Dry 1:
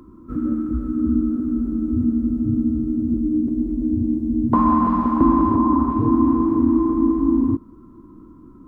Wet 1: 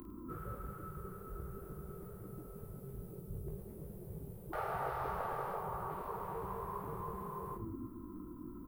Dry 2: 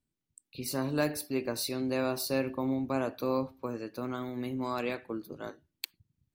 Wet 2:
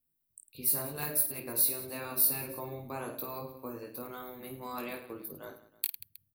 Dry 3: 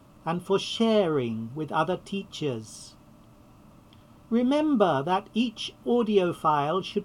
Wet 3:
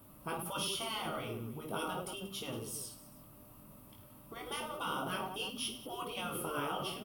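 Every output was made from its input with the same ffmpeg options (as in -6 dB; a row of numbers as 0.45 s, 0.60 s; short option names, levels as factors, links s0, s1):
-af "aecho=1:1:20|52|103.2|185.1|316.2:0.631|0.398|0.251|0.158|0.1,afftfilt=real='re*lt(hypot(re,im),0.224)':imag='im*lt(hypot(re,im),0.224)':win_size=1024:overlap=0.75,aexciter=amount=7.9:drive=5.6:freq=9400,volume=0.473"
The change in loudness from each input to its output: -24.5 LU, +2.0 LU, -12.5 LU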